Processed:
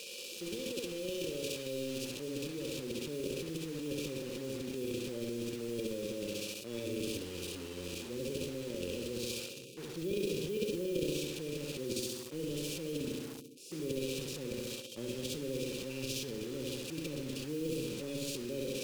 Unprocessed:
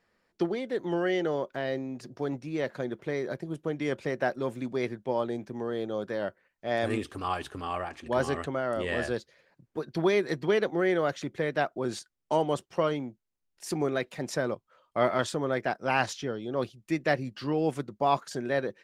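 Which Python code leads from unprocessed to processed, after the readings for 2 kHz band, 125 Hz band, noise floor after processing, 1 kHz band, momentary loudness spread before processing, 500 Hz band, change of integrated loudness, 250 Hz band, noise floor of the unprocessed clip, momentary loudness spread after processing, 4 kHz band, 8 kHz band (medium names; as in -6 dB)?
-13.0 dB, -6.5 dB, -46 dBFS, -26.5 dB, 9 LU, -9.0 dB, -8.0 dB, -6.0 dB, -79 dBFS, 5 LU, +0.5 dB, +3.5 dB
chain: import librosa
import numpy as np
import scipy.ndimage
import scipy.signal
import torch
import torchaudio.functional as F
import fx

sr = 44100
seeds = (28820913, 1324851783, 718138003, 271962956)

p1 = x + 0.5 * 10.0 ** (-18.5 / 20.0) * np.diff(np.sign(x), prepend=np.sign(x[:1]))
p2 = fx.hpss(p1, sr, part='percussive', gain_db=-17)
p3 = p2 + fx.room_flutter(p2, sr, wall_m=11.6, rt60_s=0.75, dry=0)
p4 = fx.filter_sweep_bandpass(p3, sr, from_hz=740.0, to_hz=370.0, start_s=1.15, end_s=3.08, q=1.4)
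p5 = fx.transient(p4, sr, attack_db=-3, sustain_db=11)
p6 = fx.brickwall_bandstop(p5, sr, low_hz=570.0, high_hz=2300.0)
p7 = fx.dynamic_eq(p6, sr, hz=920.0, q=1.4, threshold_db=-55.0, ratio=4.0, max_db=-4)
p8 = fx.quant_dither(p7, sr, seeds[0], bits=8, dither='none')
p9 = p7 + (p8 * librosa.db_to_amplitude(-12.0))
p10 = fx.spectral_comp(p9, sr, ratio=2.0)
y = p10 * librosa.db_to_amplitude(-8.0)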